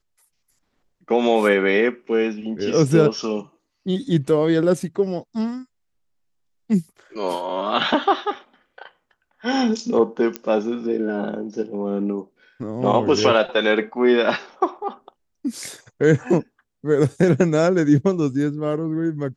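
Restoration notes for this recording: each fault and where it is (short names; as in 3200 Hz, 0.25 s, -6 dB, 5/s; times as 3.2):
10.36 pop -10 dBFS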